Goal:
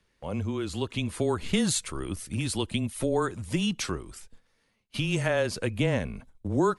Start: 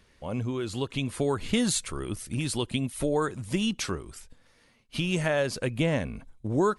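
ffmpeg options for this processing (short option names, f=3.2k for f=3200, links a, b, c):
-af "afreqshift=-16,agate=range=-9dB:threshold=-49dB:ratio=16:detection=peak"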